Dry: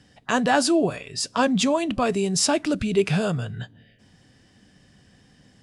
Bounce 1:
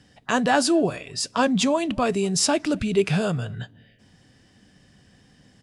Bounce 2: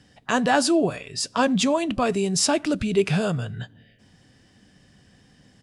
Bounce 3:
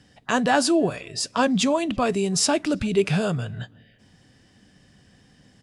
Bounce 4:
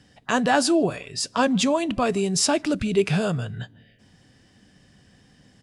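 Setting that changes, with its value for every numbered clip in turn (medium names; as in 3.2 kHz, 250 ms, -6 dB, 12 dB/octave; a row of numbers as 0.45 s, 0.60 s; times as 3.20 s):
speakerphone echo, time: 230 ms, 90 ms, 330 ms, 150 ms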